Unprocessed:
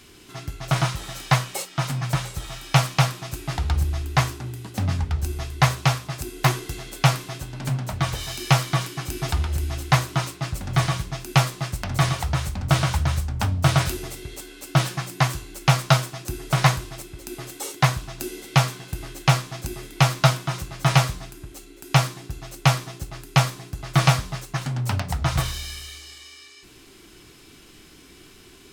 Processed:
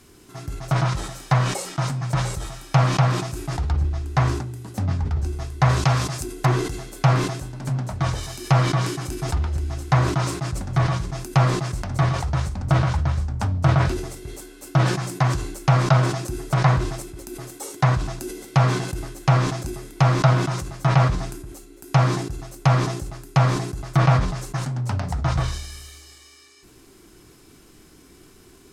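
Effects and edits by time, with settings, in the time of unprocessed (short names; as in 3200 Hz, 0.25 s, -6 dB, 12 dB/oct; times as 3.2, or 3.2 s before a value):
5.69–6.24 high shelf 3100 Hz +8.5 dB
whole clip: bell 3000 Hz -9 dB 1.5 oct; treble ducked by the level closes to 2800 Hz, closed at -15.5 dBFS; sustainer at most 58 dB/s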